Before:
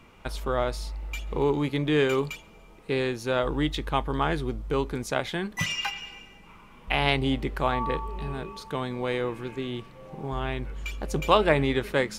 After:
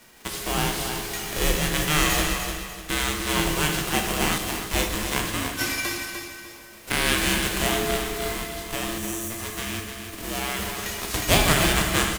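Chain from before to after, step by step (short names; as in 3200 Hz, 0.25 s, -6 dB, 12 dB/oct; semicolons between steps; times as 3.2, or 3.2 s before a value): spectral whitening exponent 0.3; HPF 51 Hz; 8.98–9.31 spectral gain 460–6000 Hz -26 dB; frequency shift -460 Hz; feedback echo 0.299 s, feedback 33%, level -7.5 dB; plate-style reverb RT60 1.3 s, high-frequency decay 0.9×, pre-delay 0 ms, DRR 2.5 dB; 4.38–4.9 three-band expander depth 100%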